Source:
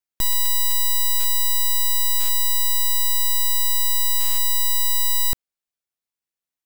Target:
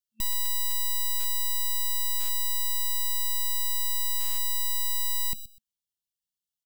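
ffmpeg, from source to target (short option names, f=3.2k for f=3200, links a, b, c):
-af "afftfilt=real='re*(1-between(b*sr/4096,220,2700))':imag='im*(1-between(b*sr/4096,220,2700))':win_size=4096:overlap=0.75,aecho=1:1:125|250:0.0891|0.0169,volume=24.5dB,asoftclip=hard,volume=-24.5dB,volume=-1dB"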